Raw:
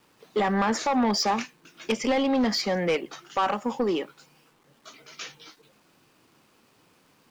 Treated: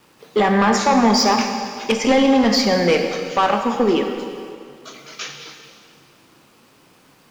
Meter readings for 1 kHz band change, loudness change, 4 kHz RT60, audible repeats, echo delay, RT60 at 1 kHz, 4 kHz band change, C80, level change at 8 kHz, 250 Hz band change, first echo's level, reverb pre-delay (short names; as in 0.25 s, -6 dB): +8.5 dB, +8.5 dB, 2.0 s, none, none, 2.2 s, +9.0 dB, 6.5 dB, +9.0 dB, +9.0 dB, none, 6 ms